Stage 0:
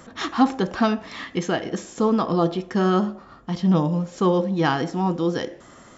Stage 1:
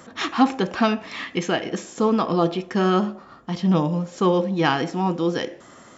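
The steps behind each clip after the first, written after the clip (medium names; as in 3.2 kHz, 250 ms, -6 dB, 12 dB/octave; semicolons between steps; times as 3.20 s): dynamic bell 2.5 kHz, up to +7 dB, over -49 dBFS, Q 3.1; high-pass 130 Hz 6 dB/octave; trim +1 dB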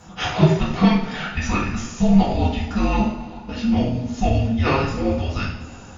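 frequency shift -420 Hz; two-slope reverb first 0.52 s, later 2.7 s, from -18 dB, DRR -7 dB; trim -4.5 dB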